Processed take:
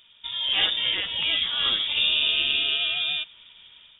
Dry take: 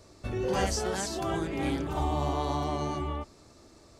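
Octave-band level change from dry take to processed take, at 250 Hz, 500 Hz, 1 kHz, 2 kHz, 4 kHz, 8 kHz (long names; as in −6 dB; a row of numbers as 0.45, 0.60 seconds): −15.5 dB, −13.0 dB, −9.0 dB, +13.0 dB, +22.5 dB, below −40 dB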